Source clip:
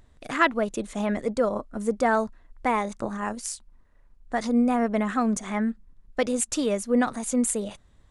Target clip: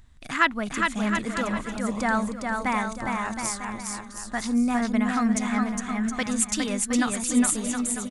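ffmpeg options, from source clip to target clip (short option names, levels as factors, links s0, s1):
-af "equalizer=f=500:t=o:w=1.3:g=-14,aecho=1:1:410|717.5|948.1|1121|1251:0.631|0.398|0.251|0.158|0.1,volume=1.41"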